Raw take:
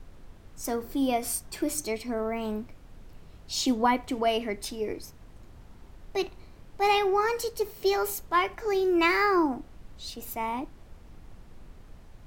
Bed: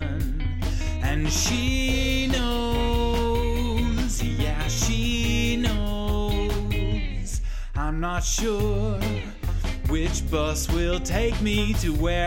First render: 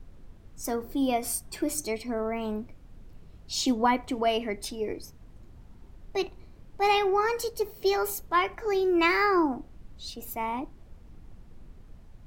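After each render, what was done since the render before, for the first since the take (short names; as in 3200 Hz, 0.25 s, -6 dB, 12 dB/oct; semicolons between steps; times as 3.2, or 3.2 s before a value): denoiser 6 dB, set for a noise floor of -51 dBFS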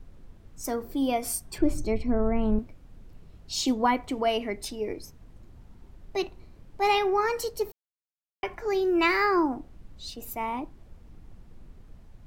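1.58–2.59 RIAA curve playback; 7.72–8.43 mute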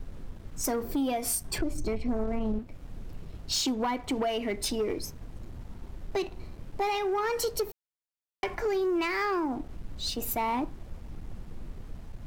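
compressor 12:1, threshold -31 dBFS, peak gain reduction 15 dB; sample leveller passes 2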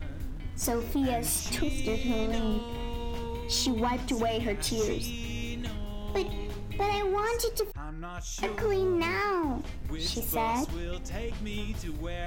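add bed -13 dB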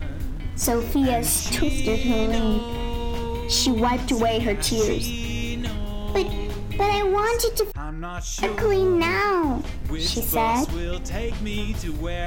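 gain +7.5 dB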